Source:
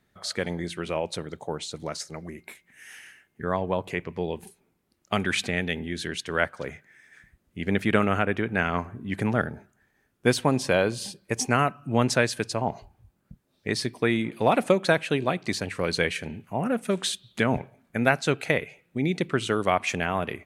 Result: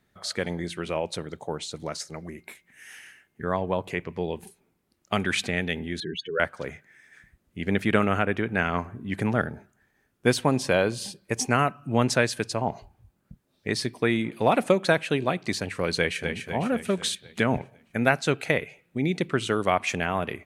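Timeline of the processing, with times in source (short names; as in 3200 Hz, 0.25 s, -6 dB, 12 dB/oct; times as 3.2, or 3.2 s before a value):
6–6.4 spectral contrast raised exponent 3.2
15.98–16.39 echo throw 0.25 s, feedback 55%, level -6 dB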